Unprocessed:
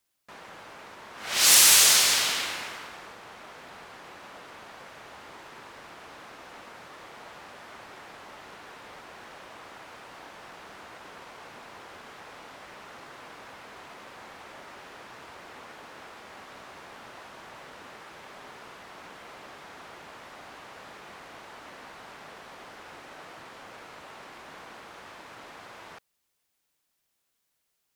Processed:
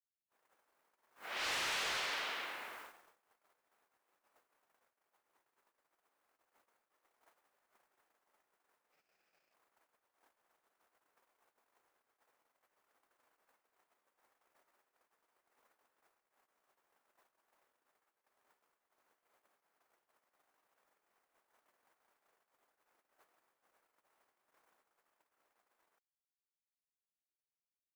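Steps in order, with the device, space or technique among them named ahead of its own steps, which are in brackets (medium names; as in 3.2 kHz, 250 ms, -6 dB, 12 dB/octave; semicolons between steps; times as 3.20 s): aircraft radio (band-pass 330–2400 Hz; hard clipper -25.5 dBFS, distortion -13 dB; white noise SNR 11 dB; gate -42 dBFS, range -45 dB); 8.92–9.54 s: graphic EQ with 31 bands 160 Hz +9 dB, 1 kHz -8 dB, 2.5 kHz +10 dB, 5 kHz +10 dB, 10 kHz -5 dB; trim -8.5 dB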